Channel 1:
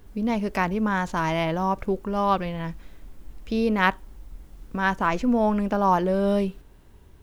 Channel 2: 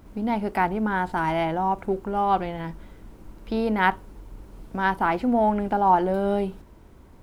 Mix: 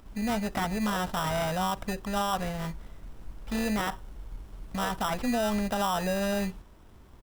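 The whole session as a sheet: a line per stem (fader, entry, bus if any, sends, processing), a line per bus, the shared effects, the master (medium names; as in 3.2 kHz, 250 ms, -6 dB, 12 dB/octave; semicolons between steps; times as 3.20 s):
-5.0 dB, 0.00 s, no send, treble shelf 3.9 kHz +11 dB; sample-rate reducer 2.2 kHz, jitter 0%
-4.5 dB, 1.6 ms, no send, none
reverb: none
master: peaking EQ 340 Hz -3 dB 2.3 oct; peak limiter -20.5 dBFS, peak gain reduction 9.5 dB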